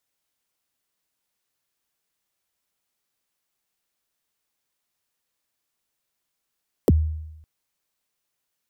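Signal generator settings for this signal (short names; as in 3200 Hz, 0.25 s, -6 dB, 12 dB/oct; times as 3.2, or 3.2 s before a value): kick drum length 0.56 s, from 570 Hz, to 78 Hz, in 31 ms, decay 0.92 s, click on, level -10.5 dB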